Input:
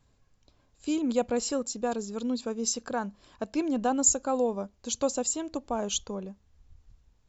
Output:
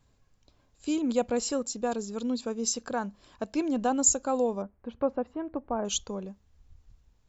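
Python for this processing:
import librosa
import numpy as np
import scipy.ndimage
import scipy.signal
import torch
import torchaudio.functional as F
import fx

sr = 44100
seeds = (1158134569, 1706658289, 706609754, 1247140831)

y = fx.lowpass(x, sr, hz=1900.0, slope=24, at=(4.62, 5.85))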